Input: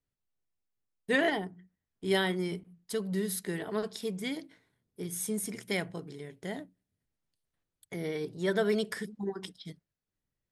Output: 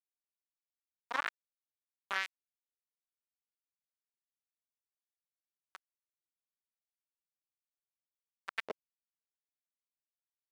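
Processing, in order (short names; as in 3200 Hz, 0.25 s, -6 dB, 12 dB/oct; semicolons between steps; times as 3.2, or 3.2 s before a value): echo with dull and thin repeats by turns 0.696 s, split 1000 Hz, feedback 51%, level -6.5 dB; sample gate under -19 dBFS; LFO band-pass saw up 2.2 Hz 420–2300 Hz; gain +6.5 dB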